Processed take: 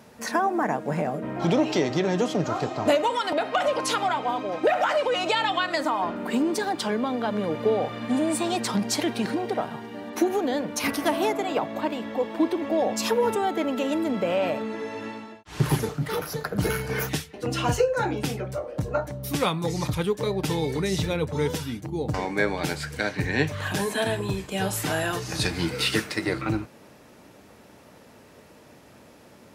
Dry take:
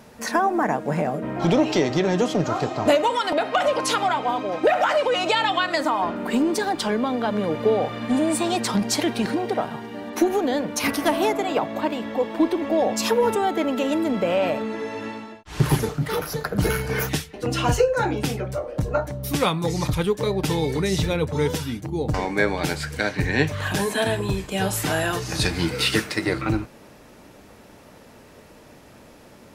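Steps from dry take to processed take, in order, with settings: HPF 70 Hz; gain -3 dB

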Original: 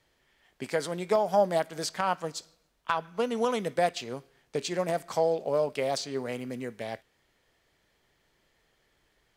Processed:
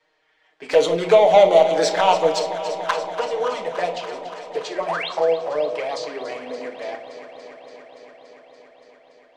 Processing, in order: LPF 9900 Hz 24 dB/oct; high shelf 2400 Hz -5.5 dB; de-hum 45.08 Hz, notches 6; 0.69–2.91 sample leveller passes 3; three-band isolator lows -21 dB, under 370 Hz, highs -14 dB, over 6500 Hz; 4.81–5.09 painted sound rise 360–4500 Hz -34 dBFS; envelope flanger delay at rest 6.5 ms, full sweep at -22 dBFS; echo with dull and thin repeats by turns 0.143 s, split 860 Hz, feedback 89%, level -11 dB; on a send at -4.5 dB: reverb RT60 0.35 s, pre-delay 6 ms; on the sum: gain +8 dB

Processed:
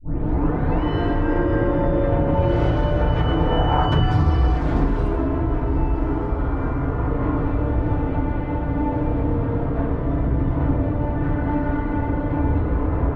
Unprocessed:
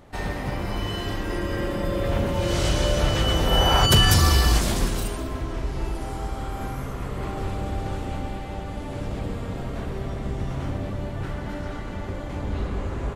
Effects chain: tape start at the beginning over 0.83 s; LPF 1400 Hz 12 dB/oct; de-hum 47.11 Hz, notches 34; compressor 6:1, threshold -25 dBFS, peak gain reduction 11.5 dB; FDN reverb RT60 0.35 s, low-frequency decay 1.2×, high-frequency decay 0.4×, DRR -2 dB; gain +5 dB

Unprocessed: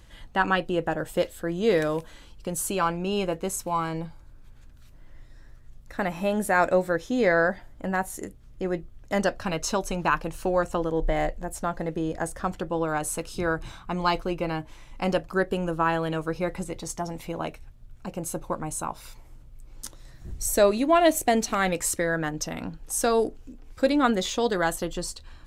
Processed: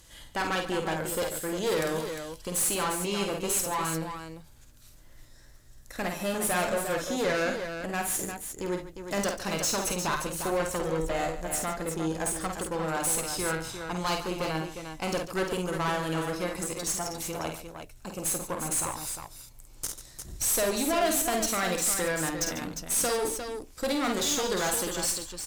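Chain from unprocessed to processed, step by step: tone controls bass -4 dB, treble +13 dB; tube stage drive 25 dB, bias 0.6; tapped delay 50/69/143/353 ms -5/-14/-13/-7.5 dB

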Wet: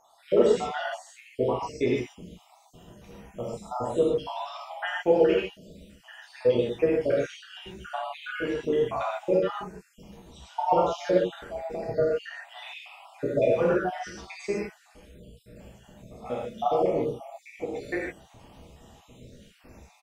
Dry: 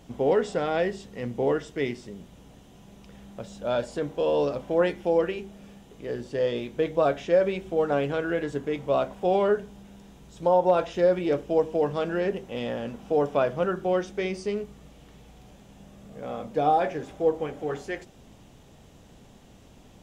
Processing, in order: random spectral dropouts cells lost 76%; harmoniser -3 st -12 dB; non-linear reverb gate 0.17 s flat, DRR -5.5 dB

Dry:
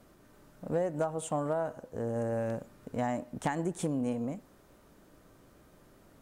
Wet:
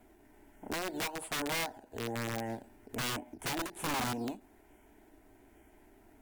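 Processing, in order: fixed phaser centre 790 Hz, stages 8; in parallel at -7 dB: decimation with a swept rate 8×, swing 160% 1.2 Hz; on the sum: wrapped overs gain 28 dB; formant shift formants +2 st; ending taper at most 220 dB/s; gain -1.5 dB

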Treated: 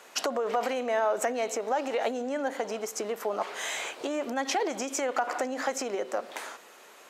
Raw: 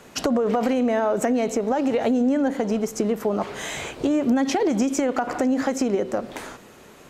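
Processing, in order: HPF 600 Hz 12 dB/oct; gain -1.5 dB

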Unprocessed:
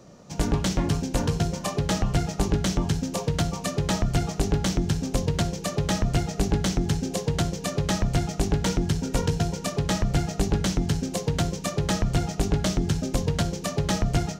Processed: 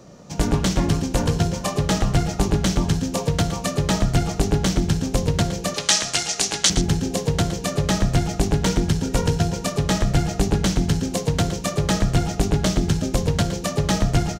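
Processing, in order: 5.74–6.7 weighting filter ITU-R 468; echo 0.115 s -11.5 dB; gain +4 dB

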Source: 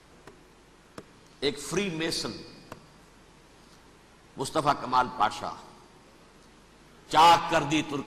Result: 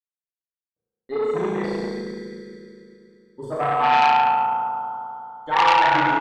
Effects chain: per-bin expansion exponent 2; gate -55 dBFS, range -47 dB; low shelf 110 Hz -9.5 dB; comb 5.2 ms, depth 44%; in parallel at +1.5 dB: compressor, threshold -35 dBFS, peak gain reduction 18 dB; on the sum: polynomial smoothing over 41 samples; tempo 1.3×; on a send: flutter echo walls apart 6 m, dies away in 0.95 s; on the sum: FDN reverb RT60 3 s, high-frequency decay 0.9×, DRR -9.5 dB; core saturation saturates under 2000 Hz; gain -4.5 dB

